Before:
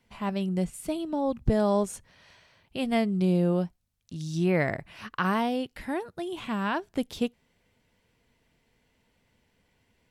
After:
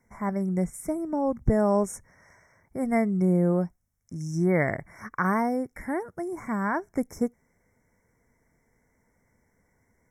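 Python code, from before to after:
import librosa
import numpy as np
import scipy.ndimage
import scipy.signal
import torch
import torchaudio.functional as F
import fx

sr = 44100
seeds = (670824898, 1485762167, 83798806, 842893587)

y = fx.brickwall_bandstop(x, sr, low_hz=2300.0, high_hz=5200.0)
y = y * librosa.db_to_amplitude(1.5)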